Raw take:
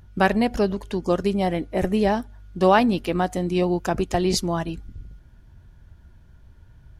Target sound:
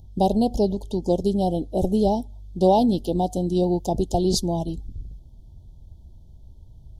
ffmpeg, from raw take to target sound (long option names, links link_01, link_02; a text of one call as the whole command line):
ffmpeg -i in.wav -af "asuperstop=centerf=1700:order=12:qfactor=0.71,lowshelf=frequency=82:gain=5.5" out.wav